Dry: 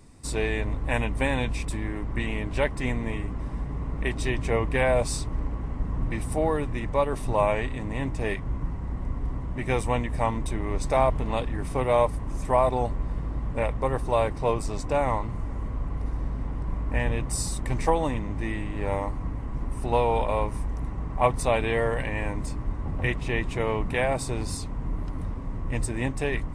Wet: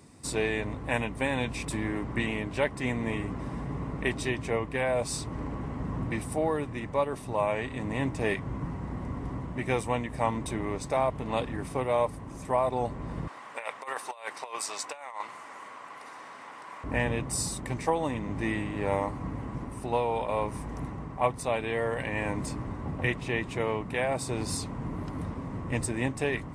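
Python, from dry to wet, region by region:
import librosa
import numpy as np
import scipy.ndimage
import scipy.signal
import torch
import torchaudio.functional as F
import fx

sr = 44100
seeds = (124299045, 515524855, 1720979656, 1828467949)

y = fx.chain(x, sr, fx.highpass(hz=1100.0, slope=12),
    fx.over_compress(threshold_db=-38.0, ratio=-0.5), at=(13.27, 16.84))
y = scipy.signal.sosfilt(scipy.signal.butter(2, 110.0, 'highpass', fs=sr, output='sos'), y)
y = fx.rider(y, sr, range_db=4, speed_s=0.5)
y = y * 10.0 ** (-1.5 / 20.0)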